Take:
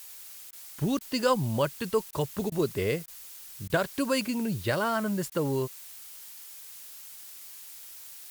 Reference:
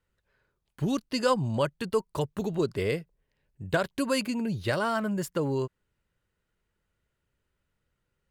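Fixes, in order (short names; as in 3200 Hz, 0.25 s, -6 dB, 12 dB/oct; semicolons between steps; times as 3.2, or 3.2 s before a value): interpolate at 0.51/0.99/2.11/2.5/3.06/3.68/5.3, 17 ms; noise print and reduce 30 dB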